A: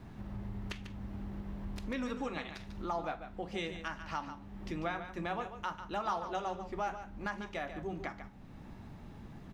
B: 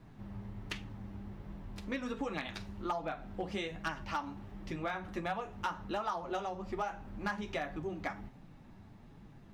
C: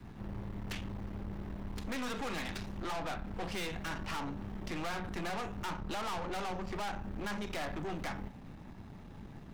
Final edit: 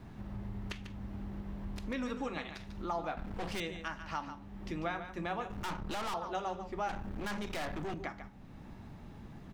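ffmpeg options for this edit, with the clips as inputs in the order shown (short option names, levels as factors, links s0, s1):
-filter_complex "[2:a]asplit=3[s0][s1][s2];[0:a]asplit=4[s3][s4][s5][s6];[s3]atrim=end=3.172[s7];[s0]atrim=start=3.168:end=3.602[s8];[s4]atrim=start=3.598:end=5.502[s9];[s1]atrim=start=5.498:end=6.142[s10];[s5]atrim=start=6.138:end=6.892[s11];[s2]atrim=start=6.888:end=7.942[s12];[s6]atrim=start=7.938[s13];[s7][s8]acrossfade=d=0.004:c1=hsin:c2=hsin[s14];[s14][s9]acrossfade=d=0.004:c1=hsin:c2=hsin[s15];[s15][s10]acrossfade=d=0.004:c1=hsin:c2=hsin[s16];[s16][s11]acrossfade=d=0.004:c1=hsin:c2=hsin[s17];[s17][s12]acrossfade=d=0.004:c1=hsin:c2=hsin[s18];[s18][s13]acrossfade=d=0.004:c1=hsin:c2=hsin"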